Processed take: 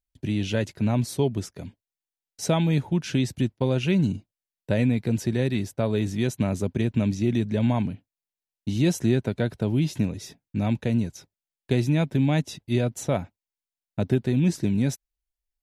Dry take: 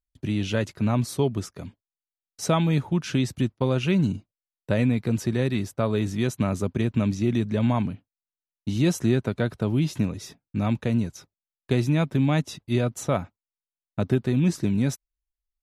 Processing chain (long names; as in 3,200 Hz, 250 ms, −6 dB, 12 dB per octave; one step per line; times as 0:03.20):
parametric band 1,200 Hz −9.5 dB 0.38 octaves